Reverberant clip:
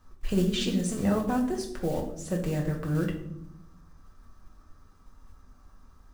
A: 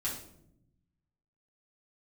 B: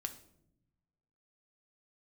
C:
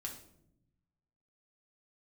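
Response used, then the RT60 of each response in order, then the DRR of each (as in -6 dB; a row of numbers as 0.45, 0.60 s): C; 0.75, 0.80, 0.75 s; -7.5, 6.5, -0.5 dB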